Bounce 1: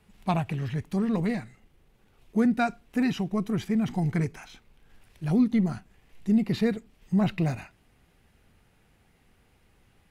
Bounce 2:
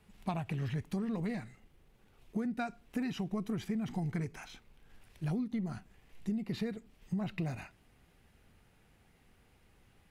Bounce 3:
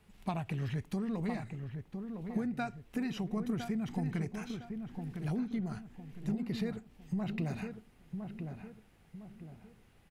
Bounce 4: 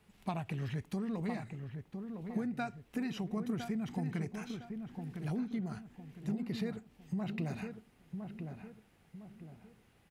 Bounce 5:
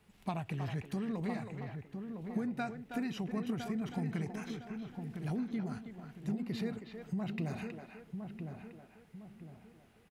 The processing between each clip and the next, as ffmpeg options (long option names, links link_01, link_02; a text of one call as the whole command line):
ffmpeg -i in.wav -af "acompressor=threshold=-29dB:ratio=16,volume=-2.5dB" out.wav
ffmpeg -i in.wav -filter_complex "[0:a]asplit=2[link_01][link_02];[link_02]adelay=1008,lowpass=frequency=1300:poles=1,volume=-6dB,asplit=2[link_03][link_04];[link_04]adelay=1008,lowpass=frequency=1300:poles=1,volume=0.4,asplit=2[link_05][link_06];[link_06]adelay=1008,lowpass=frequency=1300:poles=1,volume=0.4,asplit=2[link_07][link_08];[link_08]adelay=1008,lowpass=frequency=1300:poles=1,volume=0.4,asplit=2[link_09][link_10];[link_10]adelay=1008,lowpass=frequency=1300:poles=1,volume=0.4[link_11];[link_01][link_03][link_05][link_07][link_09][link_11]amix=inputs=6:normalize=0" out.wav
ffmpeg -i in.wav -af "highpass=frequency=79:poles=1,volume=-1dB" out.wav
ffmpeg -i in.wav -filter_complex "[0:a]asplit=2[link_01][link_02];[link_02]adelay=320,highpass=300,lowpass=3400,asoftclip=type=hard:threshold=-32.5dB,volume=-6dB[link_03];[link_01][link_03]amix=inputs=2:normalize=0" out.wav